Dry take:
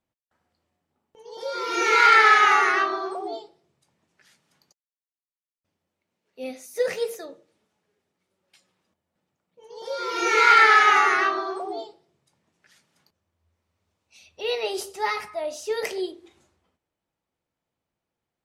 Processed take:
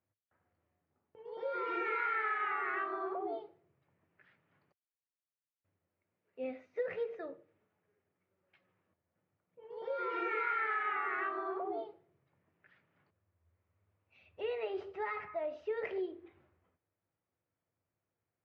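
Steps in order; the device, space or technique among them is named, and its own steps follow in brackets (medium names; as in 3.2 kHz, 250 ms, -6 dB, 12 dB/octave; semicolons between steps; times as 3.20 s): bass amplifier (compression 5:1, threshold -29 dBFS, peak gain reduction 16 dB; cabinet simulation 77–2300 Hz, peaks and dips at 100 Hz +10 dB, 220 Hz -5 dB, 860 Hz -4 dB); trim -4 dB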